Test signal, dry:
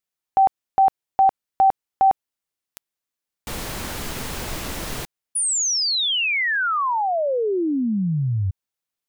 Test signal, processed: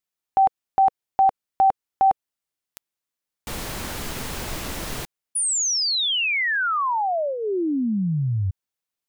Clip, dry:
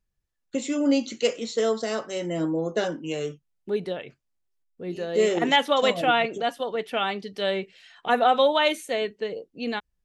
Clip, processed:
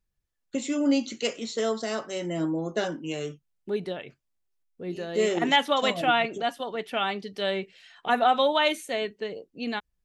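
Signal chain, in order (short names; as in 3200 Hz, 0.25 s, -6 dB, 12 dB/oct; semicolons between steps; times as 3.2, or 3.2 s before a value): dynamic EQ 490 Hz, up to -7 dB, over -40 dBFS, Q 5.5; gain -1 dB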